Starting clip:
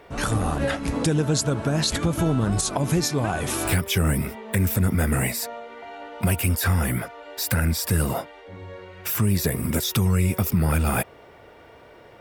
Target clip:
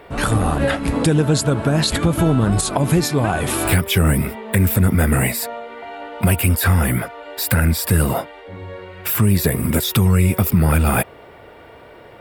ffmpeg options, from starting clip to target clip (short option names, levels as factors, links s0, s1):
-af "equalizer=f=6000:w=2.6:g=-8.5,volume=2"